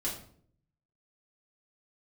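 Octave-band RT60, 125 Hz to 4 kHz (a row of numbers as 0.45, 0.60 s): 1.0, 0.80, 0.65, 0.50, 0.45, 0.40 s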